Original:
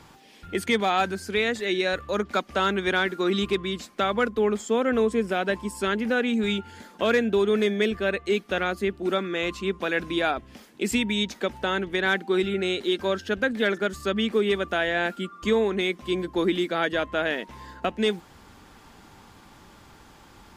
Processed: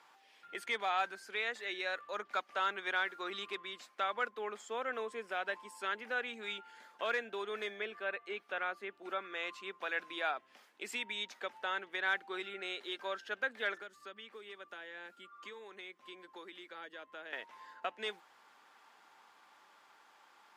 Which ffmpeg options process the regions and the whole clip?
ffmpeg -i in.wav -filter_complex "[0:a]asettb=1/sr,asplit=3[link_01][link_02][link_03];[link_01]atrim=end=7.794[link_04];[link_02]atrim=start=7.79:end=9.32,asetpts=PTS-STARTPTS,afade=type=in:duration=0.004:curve=qsin,afade=type=out:start_time=1.526:duration=0.004:curve=qsin,bandreject=frequency=1900:width=23,acrossover=split=3300[link_05][link_06];[link_06]acompressor=threshold=-52dB:ratio=4:attack=1:release=60[link_07];[link_05][link_07]amix=inputs=2:normalize=0[link_08];[link_03]atrim=start=9.316[link_09];[link_04][link_08]acrossfade=duration=0.004:curve1=hsin:curve2=qsin[link_10];[link_10][link_09]acrossfade=duration=0.004:curve1=qsin:curve2=hsin,asettb=1/sr,asplit=3[link_11][link_12][link_13];[link_11]atrim=end=13.814[link_14];[link_12]atrim=start=13.81:end=17.33,asetpts=PTS-STARTPTS,afade=type=in:duration=0.004:curve=qsin,afade=type=out:start_time=3.516:duration=0.004:curve=qsin,acrossover=split=420|4000[link_15][link_16][link_17];[link_15]acompressor=threshold=-35dB:ratio=4[link_18];[link_16]acompressor=threshold=-39dB:ratio=4[link_19];[link_17]acompressor=threshold=-52dB:ratio=4[link_20];[link_18][link_19][link_20]amix=inputs=3:normalize=0,bandreject=frequency=680:width=9.9[link_21];[link_13]atrim=start=17.326[link_22];[link_14][link_21]acrossfade=duration=0.004:curve1=hsin:curve2=qsin[link_23];[link_23][link_22]acrossfade=duration=0.004:curve1=qsin:curve2=hsin,highpass=860,highshelf=frequency=3400:gain=-11,volume=-6dB" out.wav

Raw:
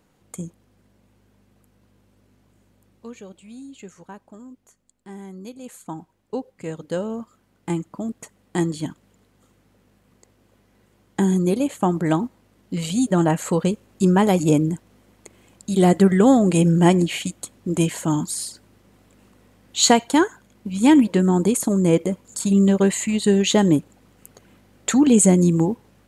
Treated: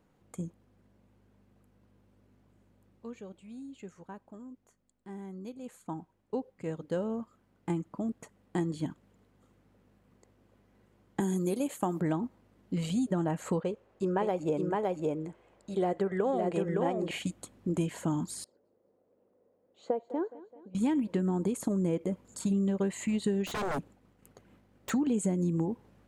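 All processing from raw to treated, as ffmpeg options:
ffmpeg -i in.wav -filter_complex "[0:a]asettb=1/sr,asplit=3[link_01][link_02][link_03];[link_01]atrim=end=11.204[link_04];[link_02]atrim=start=11.2:end=12,asetpts=PTS-STARTPTS,afade=type=in:duration=0.004:curve=qsin,afade=type=out:start_time=0.796:duration=0.004:curve=qsin,highpass=frequency=240:poles=1,aemphasis=mode=production:type=50fm[link_05];[link_03]atrim=start=11.996[link_06];[link_04][link_05]acrossfade=duration=0.004:curve1=hsin:curve2=qsin[link_07];[link_07][link_06]acrossfade=duration=0.004:curve1=qsin:curve2=hsin,asettb=1/sr,asplit=3[link_08][link_09][link_10];[link_08]atrim=end=13.604[link_11];[link_09]atrim=start=13.6:end=17.11,asetpts=PTS-STARTPTS,afade=type=in:duration=0.004:curve=qsin,afade=type=out:start_time=3.506:duration=0.004:curve=qsin,lowpass=frequency=2500:poles=1,lowshelf=frequency=340:width_type=q:width=1.5:gain=-8.5,aecho=1:1:563:0.668,atrim=end_sample=154791[link_12];[link_10]atrim=start=17.106[link_13];[link_11][link_12]acrossfade=duration=0.004:curve1=hsin:curve2=qsin[link_14];[link_14][link_13]acrossfade=duration=0.004:curve1=qsin:curve2=hsin,asettb=1/sr,asplit=3[link_15][link_16][link_17];[link_15]atrim=end=18.444[link_18];[link_16]atrim=start=18.44:end=20.75,asetpts=PTS-STARTPTS,afade=type=in:duration=0.004:curve=qsin,afade=type=out:start_time=2.306:duration=0.004:curve=qsin,bandpass=frequency=500:width_type=q:width=3.4,aecho=1:1:209|418|627|836:0.106|0.0572|0.0309|0.0167,atrim=end_sample=101871[link_19];[link_17]atrim=start=20.746[link_20];[link_18][link_19]acrossfade=duration=0.004:curve1=hsin:curve2=qsin[link_21];[link_21][link_20]acrossfade=duration=0.004:curve1=qsin:curve2=hsin,asettb=1/sr,asplit=3[link_22][link_23][link_24];[link_22]atrim=end=23.464[link_25];[link_23]atrim=start=23.46:end=24.9,asetpts=PTS-STARTPTS,afade=type=in:duration=0.004:curve=qsin,afade=type=out:start_time=1.436:duration=0.004:curve=qsin,agate=range=-33dB:threshold=-51dB:ratio=3:release=100:detection=peak,aeval=exprs='0.0891*(abs(mod(val(0)/0.0891+3,4)-2)-1)':channel_layout=same[link_26];[link_24]atrim=start=24.896[link_27];[link_25][link_26]acrossfade=duration=0.004:curve1=hsin:curve2=qsin[link_28];[link_28][link_27]acrossfade=duration=0.004:curve1=qsin:curve2=hsin,highshelf=frequency=2700:gain=-9.5,acompressor=threshold=-21dB:ratio=6,volume=-5dB" out.wav

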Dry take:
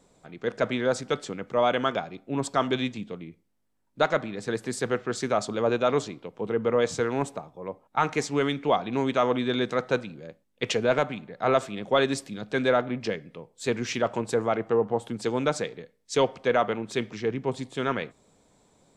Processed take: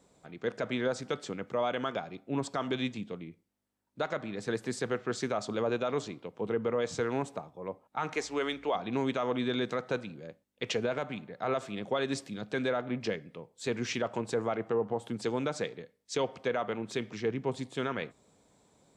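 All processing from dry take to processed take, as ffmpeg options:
ffmpeg -i in.wav -filter_complex "[0:a]asettb=1/sr,asplit=3[link_01][link_02][link_03];[link_01]atrim=end=8.154[link_04];[link_02]atrim=start=8.15:end=8.75,asetpts=PTS-STARTPTS,afade=type=in:duration=0.004:curve=qsin,afade=type=out:start_time=0.596:duration=0.004:curve=qsin,highpass=360,aeval=exprs='val(0)+0.00126*(sin(2*PI*60*n/s)+sin(2*PI*2*60*n/s)/2+sin(2*PI*3*60*n/s)/3+sin(2*PI*4*60*n/s)/4+sin(2*PI*5*60*n/s)/5)':channel_layout=same[link_05];[link_03]atrim=start=8.746[link_06];[link_04][link_05]acrossfade=duration=0.004:curve1=hsin:curve2=qsin[link_07];[link_07][link_06]acrossfade=duration=0.004:curve1=qsin:curve2=hsin,highpass=45,acrossover=split=7800[link_08][link_09];[link_09]acompressor=threshold=-51dB:ratio=4:attack=1:release=60[link_10];[link_08][link_10]amix=inputs=2:normalize=0,alimiter=limit=-17.5dB:level=0:latency=1:release=136,volume=-3dB" out.wav

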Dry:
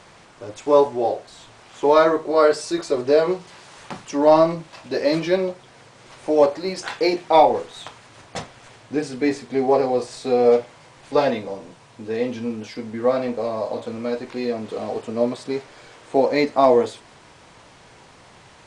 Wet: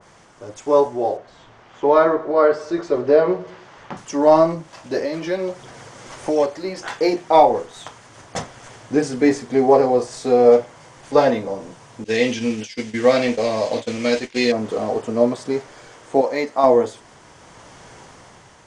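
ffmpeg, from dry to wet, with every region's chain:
ffmpeg -i in.wav -filter_complex "[0:a]asettb=1/sr,asplit=3[link_01][link_02][link_03];[link_01]atrim=end=1.174[link_04];[link_02]atrim=start=1.17:end=3.97,asetpts=PTS-STARTPTS,afade=type=in:duration=0.004:curve=qsin,afade=type=out:start_time=2.796:duration=0.004:curve=qsin,lowpass=3300,aecho=1:1:106|212|318:0.133|0.056|0.0235,atrim=end_sample=123480[link_05];[link_03]atrim=start=3.966[link_06];[link_04][link_05]acrossfade=duration=0.004:curve1=hsin:curve2=qsin[link_07];[link_07][link_06]acrossfade=duration=0.004:curve1=qsin:curve2=hsin,asettb=1/sr,asplit=3[link_08][link_09][link_10];[link_08]atrim=end=4.984[link_11];[link_09]atrim=start=4.98:end=6.88,asetpts=PTS-STARTPTS,afade=type=in:duration=0.004:curve=qsin,afade=type=out:start_time=1.896:duration=0.004:curve=qsin,acrossover=split=530|1700|3800[link_12][link_13][link_14][link_15];[link_12]acompressor=threshold=-30dB:ratio=3[link_16];[link_13]acompressor=threshold=-33dB:ratio=3[link_17];[link_14]acompressor=threshold=-39dB:ratio=3[link_18];[link_15]acompressor=threshold=-48dB:ratio=3[link_19];[link_16][link_17][link_18][link_19]amix=inputs=4:normalize=0,aphaser=in_gain=1:out_gain=1:delay=3.9:decay=0.21:speed=1.4:type=sinusoidal[link_20];[link_10]atrim=start=6.876[link_21];[link_11][link_20]acrossfade=duration=0.004:curve1=hsin:curve2=qsin[link_22];[link_22][link_21]acrossfade=duration=0.004:curve1=qsin:curve2=hsin,asettb=1/sr,asplit=3[link_23][link_24][link_25];[link_23]atrim=end=12.044[link_26];[link_24]atrim=start=12.04:end=14.52,asetpts=PTS-STARTPTS,afade=type=in:duration=0.004:curve=qsin,afade=type=out:start_time=2.476:duration=0.004:curve=qsin,lowpass=8800,agate=range=-33dB:threshold=-29dB:ratio=3:release=100:detection=peak,highshelf=frequency=1700:width_type=q:width=1.5:gain=11.5[link_27];[link_25]atrim=start=14.516[link_28];[link_26][link_27]acrossfade=duration=0.004:curve1=hsin:curve2=qsin[link_29];[link_29][link_28]acrossfade=duration=0.004:curve1=qsin:curve2=hsin,asettb=1/sr,asplit=3[link_30][link_31][link_32];[link_30]atrim=end=16.214[link_33];[link_31]atrim=start=16.21:end=16.64,asetpts=PTS-STARTPTS,afade=type=in:duration=0.004:curve=qsin,afade=type=out:start_time=0.426:duration=0.004:curve=qsin,lowshelf=frequency=370:gain=-11,bandreject=frequency=1500:width=28[link_34];[link_32]atrim=start=16.636[link_35];[link_33][link_34]acrossfade=duration=0.004:curve1=hsin:curve2=qsin[link_36];[link_36][link_35]acrossfade=duration=0.004:curve1=qsin:curve2=hsin,equalizer=frequency=2500:width_type=o:width=0.33:gain=-5,equalizer=frequency=4000:width_type=o:width=0.33:gain=-6,equalizer=frequency=6300:width_type=o:width=0.33:gain=4,dynaudnorm=framelen=200:gausssize=9:maxgain=11.5dB,adynamicequalizer=threshold=0.0282:dfrequency=2000:dqfactor=0.7:tfrequency=2000:tqfactor=0.7:attack=5:release=100:ratio=0.375:range=2:mode=cutabove:tftype=highshelf,volume=-1dB" out.wav

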